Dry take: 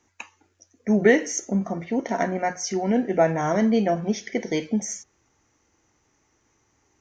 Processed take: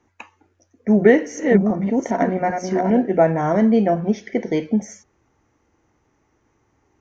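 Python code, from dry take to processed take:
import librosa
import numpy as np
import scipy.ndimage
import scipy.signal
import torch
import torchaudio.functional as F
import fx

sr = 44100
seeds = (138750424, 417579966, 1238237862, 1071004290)

y = fx.reverse_delay(x, sr, ms=399, wet_db=-5.0, at=(0.91, 3.02))
y = fx.lowpass(y, sr, hz=1300.0, slope=6)
y = y * 10.0 ** (5.0 / 20.0)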